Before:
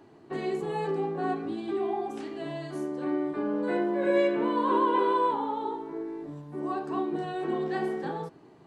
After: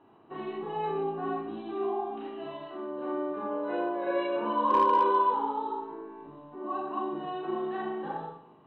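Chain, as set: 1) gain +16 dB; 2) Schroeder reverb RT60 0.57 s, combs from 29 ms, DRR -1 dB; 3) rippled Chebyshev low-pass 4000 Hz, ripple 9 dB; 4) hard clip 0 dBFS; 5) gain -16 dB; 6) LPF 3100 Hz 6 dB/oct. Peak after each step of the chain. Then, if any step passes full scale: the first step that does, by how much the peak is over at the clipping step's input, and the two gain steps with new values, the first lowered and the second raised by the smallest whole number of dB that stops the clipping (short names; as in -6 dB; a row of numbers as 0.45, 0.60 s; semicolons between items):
+2.0, +7.0, +4.0, 0.0, -16.0, -16.0 dBFS; step 1, 4.0 dB; step 1 +12 dB, step 5 -12 dB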